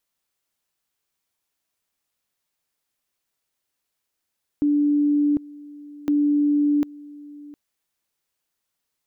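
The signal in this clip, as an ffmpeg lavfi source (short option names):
-f lavfi -i "aevalsrc='pow(10,(-16-21.5*gte(mod(t,1.46),0.75))/20)*sin(2*PI*292*t)':d=2.92:s=44100"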